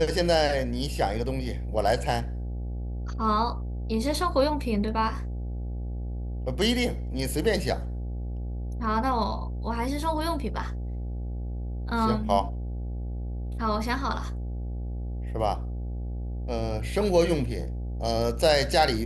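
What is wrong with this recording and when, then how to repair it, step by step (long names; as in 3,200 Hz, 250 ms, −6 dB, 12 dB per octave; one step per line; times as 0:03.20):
mains buzz 60 Hz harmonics 14 −32 dBFS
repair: hum removal 60 Hz, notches 14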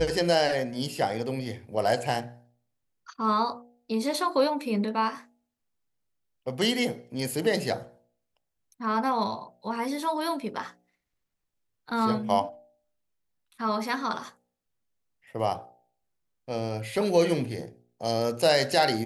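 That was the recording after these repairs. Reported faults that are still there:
none of them is left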